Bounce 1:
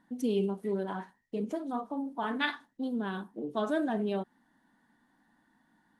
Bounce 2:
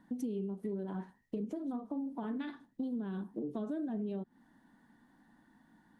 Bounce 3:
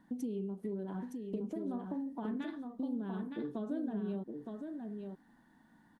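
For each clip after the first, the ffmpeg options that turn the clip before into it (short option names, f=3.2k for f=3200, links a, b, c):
-filter_complex "[0:a]acrossover=split=450[a][b];[b]acompressor=threshold=-47dB:ratio=3[c];[a][c]amix=inputs=2:normalize=0,lowshelf=f=460:g=7,acompressor=threshold=-35dB:ratio=6"
-af "aecho=1:1:915:0.562,volume=-1dB"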